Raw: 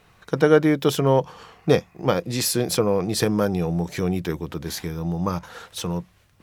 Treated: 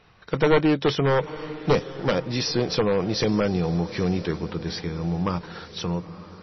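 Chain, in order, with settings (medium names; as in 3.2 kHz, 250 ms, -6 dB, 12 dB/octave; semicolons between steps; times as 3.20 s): one-sided wavefolder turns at -12.5 dBFS; echo that smears into a reverb 937 ms, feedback 42%, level -15 dB; MP3 24 kbps 22.05 kHz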